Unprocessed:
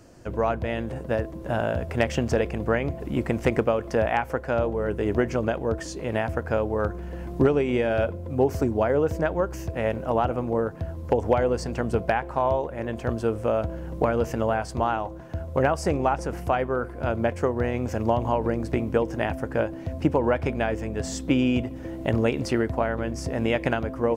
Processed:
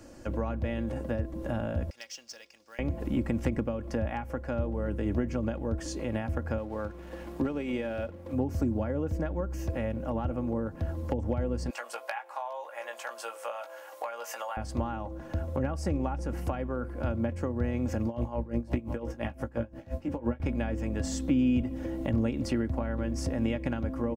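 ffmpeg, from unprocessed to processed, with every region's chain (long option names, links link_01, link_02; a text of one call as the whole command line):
ffmpeg -i in.wav -filter_complex "[0:a]asettb=1/sr,asplit=3[link_01][link_02][link_03];[link_01]atrim=end=1.904[link_04];[link_02]atrim=start=1.9:end=2.79,asetpts=PTS-STARTPTS,afade=type=in:duration=0.004:curve=qsin,afade=type=out:start_time=0.886:duration=0.004:curve=qsin,bandpass=frequency=5300:width_type=q:width=4,acrusher=bits=4:mode=log:mix=0:aa=0.000001[link_05];[link_03]atrim=start=2.786[link_06];[link_04][link_05]acrossfade=duration=0.004:curve1=hsin:curve2=qsin[link_07];[link_07][link_06]acrossfade=duration=0.004:curve1=qsin:curve2=hsin,asettb=1/sr,asplit=3[link_08][link_09][link_10];[link_08]atrim=end=6.584[link_11];[link_09]atrim=start=6.58:end=8.33,asetpts=PTS-STARTPTS,afade=type=in:duration=0.004:curve=qsin,afade=type=out:start_time=1.746:duration=0.004:curve=qsin,lowshelf=frequency=200:gain=-10.5,aeval=exprs='sgn(val(0))*max(abs(val(0))-0.00355,0)':channel_layout=same[link_12];[link_10]atrim=start=8.326[link_13];[link_11][link_12]acrossfade=duration=0.004:curve1=hsin:curve2=qsin[link_14];[link_14][link_13]acrossfade=duration=0.004:curve1=qsin:curve2=hsin,asettb=1/sr,asplit=3[link_15][link_16][link_17];[link_15]atrim=end=11.704[link_18];[link_16]atrim=start=11.7:end=14.57,asetpts=PTS-STARTPTS,afade=type=in:duration=0.004:curve=qsin,afade=type=out:start_time=2.866:duration=0.004:curve=qsin,highpass=frequency=730:width=0.5412,highpass=frequency=730:width=1.3066,highshelf=frequency=7200:gain=7.5,asplit=2[link_19][link_20];[link_20]adelay=17,volume=-6dB[link_21];[link_19][link_21]amix=inputs=2:normalize=0,atrim=end_sample=126567[link_22];[link_17]atrim=start=14.566[link_23];[link_18][link_22]acrossfade=duration=0.004:curve1=hsin:curve2=qsin[link_24];[link_24][link_23]acrossfade=duration=0.004:curve1=qsin:curve2=hsin,asettb=1/sr,asplit=3[link_25][link_26][link_27];[link_25]atrim=end=18.054[link_28];[link_26]atrim=start=18.05:end=20.4,asetpts=PTS-STARTPTS,afade=type=in:duration=0.004:curve=qsin,afade=type=out:start_time=2.346:duration=0.004:curve=qsin,asplit=2[link_29][link_30];[link_30]adelay=17,volume=-4.5dB[link_31];[link_29][link_31]amix=inputs=2:normalize=0,atrim=end_sample=103635,aecho=1:1:584:0.0794,atrim=end_sample=103635,aeval=exprs='val(0)*pow(10,-20*(0.5-0.5*cos(2*PI*5.8*n/s))/20)':channel_layout=same[link_32];[link_27]atrim=start=20.396[link_33];[link_28][link_32]acrossfade=duration=0.004:curve1=hsin:curve2=qsin[link_34];[link_34][link_33]acrossfade=duration=0.004:curve1=qsin:curve2=hsin,aecho=1:1:3.6:0.51,acrossover=split=230[link_35][link_36];[link_36]acompressor=threshold=-34dB:ratio=6[link_37];[link_35][link_37]amix=inputs=2:normalize=0" out.wav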